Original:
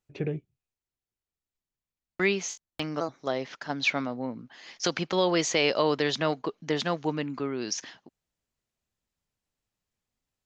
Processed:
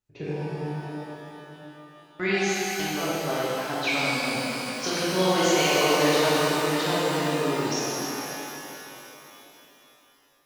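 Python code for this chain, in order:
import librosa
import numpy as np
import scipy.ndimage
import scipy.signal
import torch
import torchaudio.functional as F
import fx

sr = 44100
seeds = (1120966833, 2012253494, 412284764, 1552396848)

y = fx.rev_shimmer(x, sr, seeds[0], rt60_s=3.5, semitones=12, shimmer_db=-8, drr_db=-9.0)
y = F.gain(torch.from_numpy(y), -5.5).numpy()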